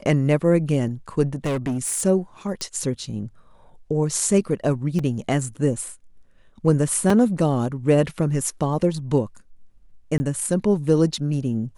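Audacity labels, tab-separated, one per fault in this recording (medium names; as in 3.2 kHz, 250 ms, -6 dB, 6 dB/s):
1.260000	2.060000	clipped -20.5 dBFS
2.610000	2.610000	pop -14 dBFS
4.990000	4.990000	dropout 3.6 ms
7.100000	7.100000	dropout 3.5 ms
10.180000	10.200000	dropout 20 ms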